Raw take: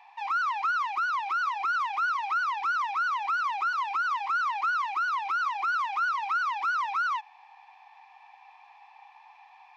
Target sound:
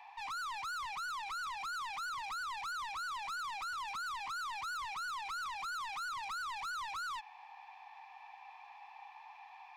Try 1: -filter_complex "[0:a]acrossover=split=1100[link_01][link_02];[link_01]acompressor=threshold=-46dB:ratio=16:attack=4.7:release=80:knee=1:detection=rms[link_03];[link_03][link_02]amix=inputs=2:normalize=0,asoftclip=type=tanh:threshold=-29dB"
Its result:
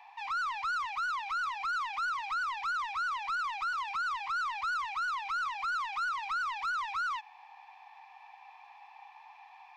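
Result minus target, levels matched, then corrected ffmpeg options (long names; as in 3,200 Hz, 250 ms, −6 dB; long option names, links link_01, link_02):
soft clipping: distortion −9 dB
-filter_complex "[0:a]acrossover=split=1100[link_01][link_02];[link_01]acompressor=threshold=-46dB:ratio=16:attack=4.7:release=80:knee=1:detection=rms[link_03];[link_03][link_02]amix=inputs=2:normalize=0,asoftclip=type=tanh:threshold=-39dB"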